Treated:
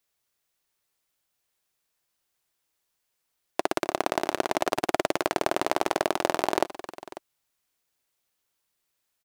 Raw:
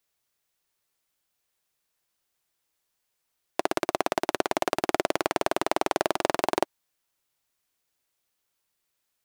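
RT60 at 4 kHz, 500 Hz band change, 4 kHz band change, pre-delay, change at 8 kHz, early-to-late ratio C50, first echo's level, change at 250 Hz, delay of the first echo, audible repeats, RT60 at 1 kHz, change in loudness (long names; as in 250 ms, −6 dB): no reverb audible, 0.0 dB, 0.0 dB, no reverb audible, 0.0 dB, no reverb audible, −16.5 dB, 0.0 dB, 264 ms, 2, no reverb audible, 0.0 dB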